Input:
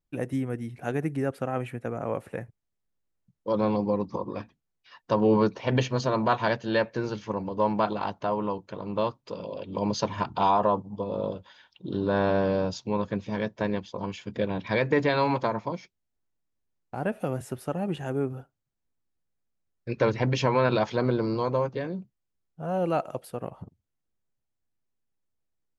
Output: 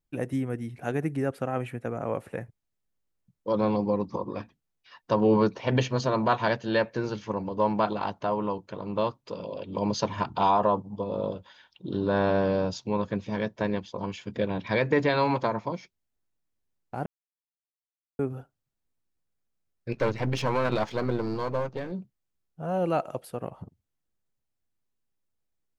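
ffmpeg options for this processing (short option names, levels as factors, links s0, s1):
-filter_complex "[0:a]asettb=1/sr,asplit=3[s0][s1][s2];[s0]atrim=end=19.924[s3];[s1]atrim=start=19.92:end=21.92,asetpts=PTS-STARTPTS,afade=t=in:d=0.004:c=qsin,afade=t=out:st=1.996:d=0.004:c=qsin,aeval=exprs='if(lt(val(0),0),0.447*val(0),val(0))':c=same[s4];[s2]atrim=start=21.916[s5];[s3][s4]acrossfade=d=0.004:c1=hsin:c2=qsin[s6];[s6][s5]acrossfade=d=0.004:c1=qsin:c2=hsin,asplit=3[s7][s8][s9];[s7]atrim=end=17.06,asetpts=PTS-STARTPTS,afade=t=out:st=17.056:d=0.004:c=hsin[s10];[s8]atrim=start=17.06:end=18.19,asetpts=PTS-STARTPTS,volume=0[s11];[s9]atrim=start=18.19,asetpts=PTS-STARTPTS,afade=t=in:d=0.004:c=hsin[s12];[s10][s11][s12]concat=n=3:v=0:a=1"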